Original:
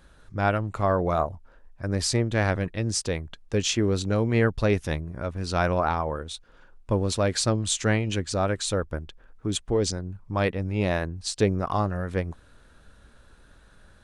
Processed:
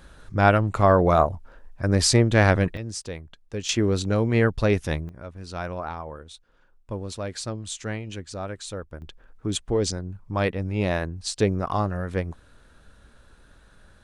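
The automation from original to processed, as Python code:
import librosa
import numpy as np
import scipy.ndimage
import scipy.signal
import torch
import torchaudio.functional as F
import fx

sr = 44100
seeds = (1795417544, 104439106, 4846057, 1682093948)

y = fx.gain(x, sr, db=fx.steps((0.0, 6.0), (2.77, -6.5), (3.69, 1.5), (5.09, -8.0), (9.02, 0.5)))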